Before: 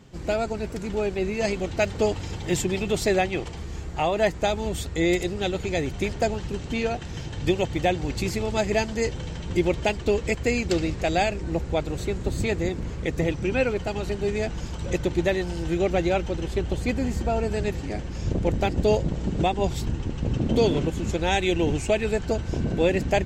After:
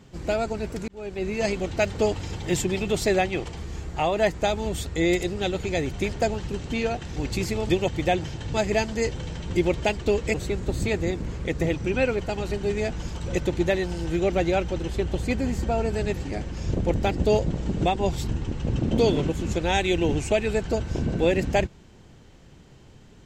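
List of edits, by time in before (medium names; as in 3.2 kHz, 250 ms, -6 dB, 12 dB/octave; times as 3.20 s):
0.88–1.34 s: fade in
7.16–7.46 s: swap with 8.01–8.54 s
10.34–11.92 s: delete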